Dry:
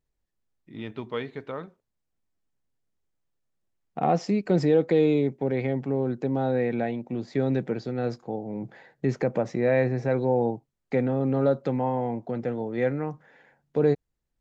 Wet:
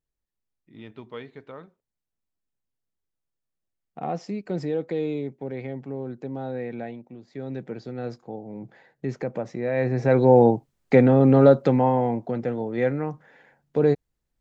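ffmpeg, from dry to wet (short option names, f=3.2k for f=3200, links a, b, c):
-af "volume=16.5dB,afade=t=out:st=6.89:d=0.32:silence=0.421697,afade=t=in:st=7.21:d=0.68:silence=0.316228,afade=t=in:st=9.73:d=0.62:silence=0.223872,afade=t=out:st=11.33:d=1.09:silence=0.446684"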